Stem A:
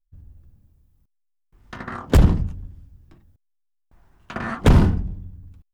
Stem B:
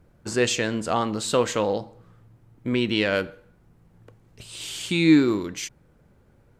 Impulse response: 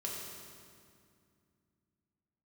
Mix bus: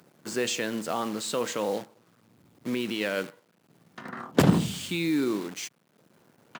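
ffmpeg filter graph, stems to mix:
-filter_complex "[0:a]adelay=2250,volume=1dB[a];[1:a]acompressor=mode=upward:threshold=-39dB:ratio=2.5,alimiter=limit=-14.5dB:level=0:latency=1:release=22,acrusher=bits=7:dc=4:mix=0:aa=0.000001,volume=-4dB,asplit=2[b][c];[c]apad=whole_len=352230[d];[a][d]sidechaingate=range=-7dB:threshold=-50dB:ratio=16:detection=peak[e];[e][b]amix=inputs=2:normalize=0,highpass=f=150:w=0.5412,highpass=f=150:w=1.3066"

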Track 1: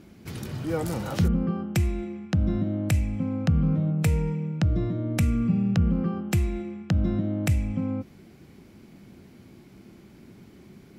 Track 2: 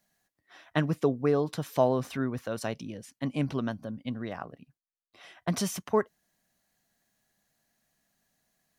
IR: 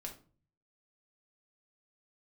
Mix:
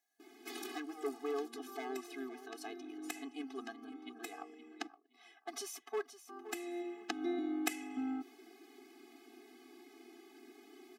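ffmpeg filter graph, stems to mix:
-filter_complex "[0:a]adelay=200,volume=0.5dB,asplit=3[a][b][c];[a]atrim=end=4.87,asetpts=PTS-STARTPTS,afade=t=out:st=4.866:d=0.004:c=hsin[d];[b]atrim=start=4.87:end=6.29,asetpts=PTS-STARTPTS,volume=0[e];[c]atrim=start=6.29,asetpts=PTS-STARTPTS,afade=t=in:d=0.004:c=hsin[f];[d][e][f]concat=n=3:v=0:a=1,asplit=2[g][h];[h]volume=-21.5dB[i];[1:a]asoftclip=type=hard:threshold=-21.5dB,volume=-6.5dB,asplit=3[j][k][l];[k]volume=-13dB[m];[l]apad=whole_len=493306[n];[g][n]sidechaincompress=threshold=-49dB:ratio=12:attack=38:release=743[o];[2:a]atrim=start_sample=2205[p];[i][p]afir=irnorm=-1:irlink=0[q];[m]aecho=0:1:519|1038|1557|2076:1|0.23|0.0529|0.0122[r];[o][j][q][r]amix=inputs=4:normalize=0,highpass=380,afftfilt=real='re*eq(mod(floor(b*sr/1024/220),2),1)':imag='im*eq(mod(floor(b*sr/1024/220),2),1)':win_size=1024:overlap=0.75"

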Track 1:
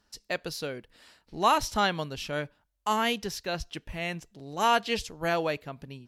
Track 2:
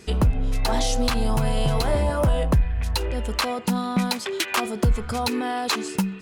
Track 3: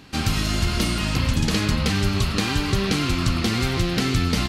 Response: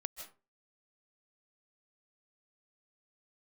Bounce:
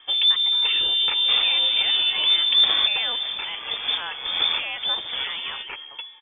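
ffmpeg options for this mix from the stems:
-filter_complex "[0:a]highpass=1k,alimiter=limit=-23dB:level=0:latency=1,volume=2dB,asplit=2[a][b];[1:a]aecho=1:1:2.2:0.55,volume=-3dB,afade=t=out:st=3:d=0.43:silence=0.446684[c];[2:a]acrusher=bits=4:mix=0:aa=0.000001,adelay=1150,volume=-1dB[d];[b]apad=whole_len=248374[e];[d][e]sidechaincompress=threshold=-44dB:ratio=12:attack=31:release=271[f];[a][c][f]amix=inputs=3:normalize=0,lowpass=f=3.1k:t=q:w=0.5098,lowpass=f=3.1k:t=q:w=0.6013,lowpass=f=3.1k:t=q:w=0.9,lowpass=f=3.1k:t=q:w=2.563,afreqshift=-3600"

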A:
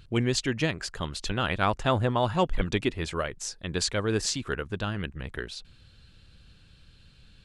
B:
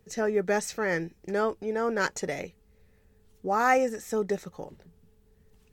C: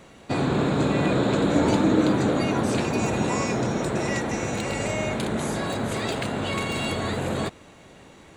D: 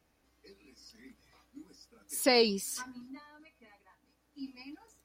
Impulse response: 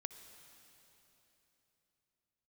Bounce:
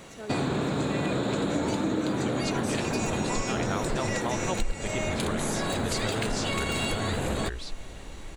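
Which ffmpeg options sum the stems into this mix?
-filter_complex "[0:a]asubboost=boost=11.5:cutoff=53,adelay=2100,volume=-1.5dB[a];[1:a]volume=-14dB[b];[2:a]highshelf=f=3.9k:g=6,volume=1.5dB[c];[3:a]adelay=1600,volume=-15.5dB[d];[a][b][c][d]amix=inputs=4:normalize=0,acompressor=threshold=-25dB:ratio=5"

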